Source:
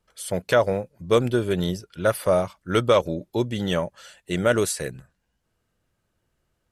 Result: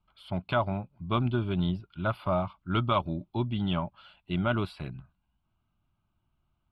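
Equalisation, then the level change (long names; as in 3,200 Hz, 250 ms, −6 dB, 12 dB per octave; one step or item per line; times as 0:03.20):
high-frequency loss of the air 290 metres
phaser with its sweep stopped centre 1,800 Hz, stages 6
0.0 dB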